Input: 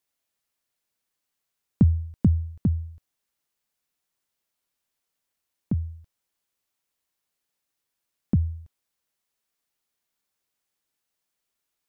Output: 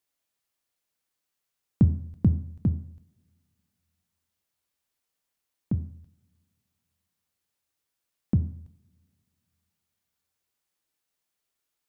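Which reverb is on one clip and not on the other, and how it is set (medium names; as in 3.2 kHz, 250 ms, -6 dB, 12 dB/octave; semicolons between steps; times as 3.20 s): two-slope reverb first 0.59 s, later 2.4 s, from -26 dB, DRR 10 dB; trim -1.5 dB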